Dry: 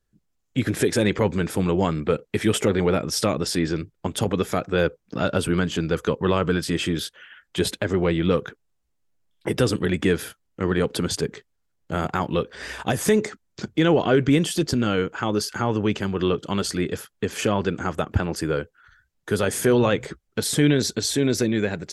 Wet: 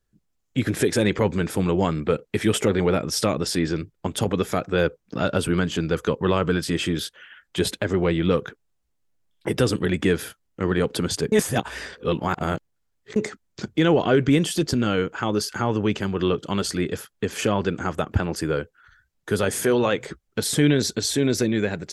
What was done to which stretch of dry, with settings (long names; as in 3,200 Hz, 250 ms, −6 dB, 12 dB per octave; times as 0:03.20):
0:11.32–0:13.16: reverse
0:19.64–0:20.08: low-shelf EQ 150 Hz −11 dB